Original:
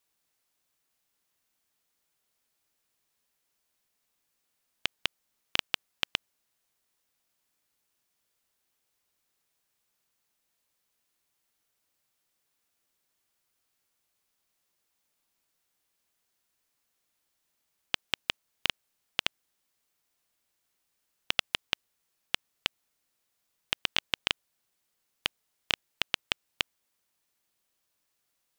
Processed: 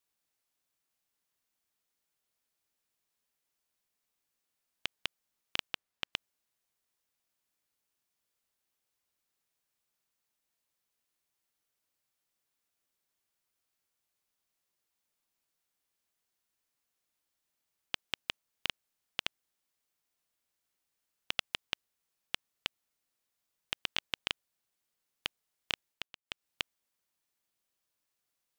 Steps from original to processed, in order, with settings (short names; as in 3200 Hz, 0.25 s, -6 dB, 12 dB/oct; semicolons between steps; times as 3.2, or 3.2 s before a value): 5.73–6.13 high shelf 4300 Hz -6.5 dB; 25.88–26.46 dip -17.5 dB, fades 0.24 s; gain -6 dB